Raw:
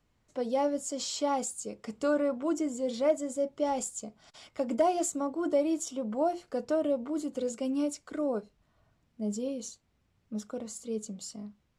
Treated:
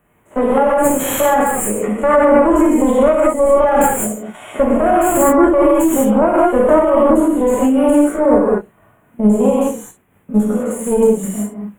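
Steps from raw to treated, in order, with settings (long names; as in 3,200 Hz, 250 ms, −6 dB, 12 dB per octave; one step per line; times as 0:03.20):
spectrum averaged block by block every 50 ms
high-pass filter 210 Hz 6 dB per octave
high-shelf EQ 5,600 Hz +5 dB
in parallel at −2.5 dB: output level in coarse steps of 18 dB
on the sum: tube saturation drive 23 dB, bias 0.8
Butterworth band-reject 4,900 Hz, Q 0.64
reverb whose tail is shaped and stops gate 220 ms flat, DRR −5 dB
boost into a limiter +24 dB
amplitude modulation by smooth noise, depth 60%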